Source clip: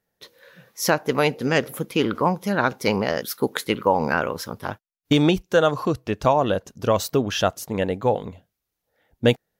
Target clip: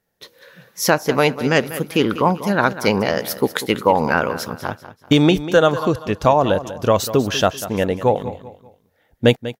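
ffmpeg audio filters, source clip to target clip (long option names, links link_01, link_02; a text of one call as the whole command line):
ffmpeg -i in.wav -af "aecho=1:1:194|388|582:0.2|0.0698|0.0244,volume=4dB" out.wav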